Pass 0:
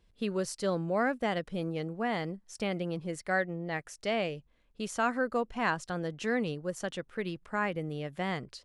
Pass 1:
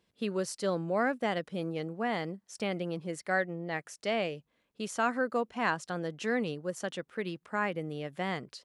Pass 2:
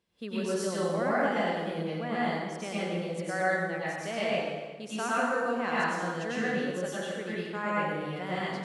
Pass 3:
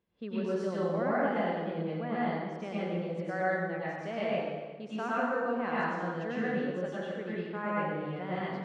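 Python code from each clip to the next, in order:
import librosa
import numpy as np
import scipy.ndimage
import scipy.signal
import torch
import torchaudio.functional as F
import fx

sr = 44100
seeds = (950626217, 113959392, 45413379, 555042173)

y1 = scipy.signal.sosfilt(scipy.signal.butter(2, 150.0, 'highpass', fs=sr, output='sos'), x)
y2 = fx.rev_plate(y1, sr, seeds[0], rt60_s=1.4, hf_ratio=0.8, predelay_ms=85, drr_db=-8.5)
y2 = F.gain(torch.from_numpy(y2), -6.0).numpy()
y3 = fx.spacing_loss(y2, sr, db_at_10k=27)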